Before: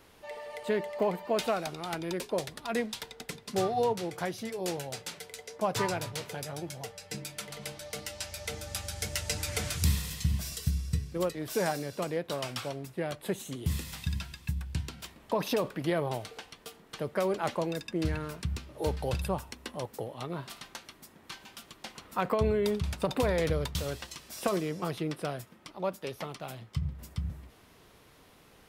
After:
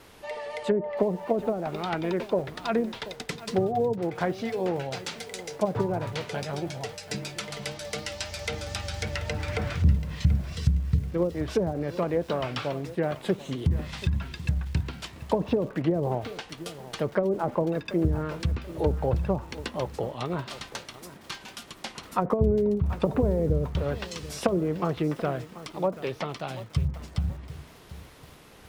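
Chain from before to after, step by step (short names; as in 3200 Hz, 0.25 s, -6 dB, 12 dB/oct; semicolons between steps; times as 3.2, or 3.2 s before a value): vibrato 3.9 Hz 34 cents; treble ducked by the level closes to 430 Hz, closed at -25 dBFS; lo-fi delay 0.734 s, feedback 35%, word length 8-bit, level -15 dB; gain +6.5 dB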